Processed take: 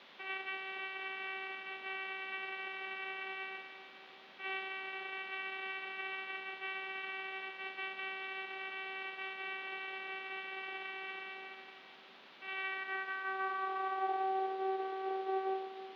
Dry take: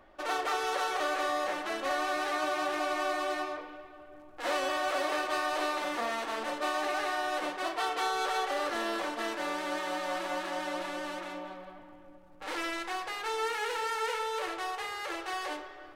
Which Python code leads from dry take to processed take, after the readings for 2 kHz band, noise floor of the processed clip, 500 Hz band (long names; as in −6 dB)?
−4.5 dB, −57 dBFS, −10.0 dB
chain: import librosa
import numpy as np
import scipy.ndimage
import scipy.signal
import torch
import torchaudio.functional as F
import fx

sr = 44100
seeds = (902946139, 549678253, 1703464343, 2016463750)

p1 = fx.vocoder(x, sr, bands=4, carrier='saw', carrier_hz=383.0)
p2 = fx.rider(p1, sr, range_db=4, speed_s=0.5)
p3 = fx.filter_sweep_bandpass(p2, sr, from_hz=2500.0, to_hz=590.0, start_s=12.52, end_s=14.59, q=2.6)
p4 = fx.quant_dither(p3, sr, seeds[0], bits=8, dither='triangular')
p5 = p3 + (p4 * 10.0 ** (-3.5 / 20.0))
p6 = scipy.signal.sosfilt(scipy.signal.ellip(3, 1.0, 40, [200.0, 3500.0], 'bandpass', fs=sr, output='sos'), p5)
y = p6 * 10.0 ** (1.5 / 20.0)